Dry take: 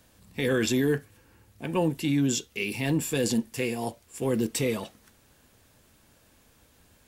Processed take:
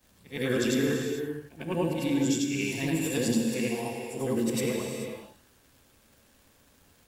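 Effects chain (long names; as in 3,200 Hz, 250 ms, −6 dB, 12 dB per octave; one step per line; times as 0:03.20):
every overlapping window played backwards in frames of 218 ms
reverb whose tail is shaped and stops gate 470 ms flat, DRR 3 dB
surface crackle 170 per second −50 dBFS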